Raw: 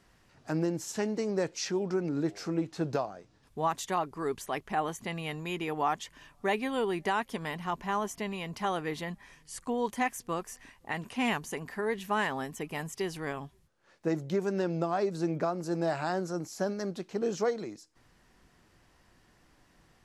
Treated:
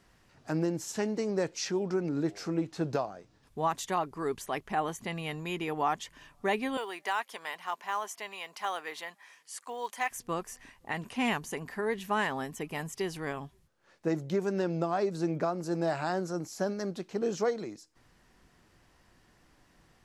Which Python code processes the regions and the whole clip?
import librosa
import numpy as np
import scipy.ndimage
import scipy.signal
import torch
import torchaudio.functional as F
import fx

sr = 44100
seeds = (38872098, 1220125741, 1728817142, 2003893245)

y = fx.chain(x, sr, fx.highpass(hz=720.0, slope=12),
    fx.quant_float(bits=4), at=(6.77, 10.11))